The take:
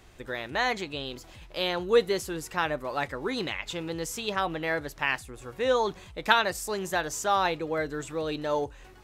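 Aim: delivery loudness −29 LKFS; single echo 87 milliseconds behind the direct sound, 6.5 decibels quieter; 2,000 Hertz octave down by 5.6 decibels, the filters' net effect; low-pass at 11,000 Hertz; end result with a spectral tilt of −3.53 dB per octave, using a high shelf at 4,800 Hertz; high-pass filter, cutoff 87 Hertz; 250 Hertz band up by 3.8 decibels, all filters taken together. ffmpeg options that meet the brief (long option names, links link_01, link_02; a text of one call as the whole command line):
ffmpeg -i in.wav -af "highpass=87,lowpass=11000,equalizer=frequency=250:width_type=o:gain=5.5,equalizer=frequency=2000:width_type=o:gain=-6.5,highshelf=frequency=4800:gain=-6.5,aecho=1:1:87:0.473" out.wav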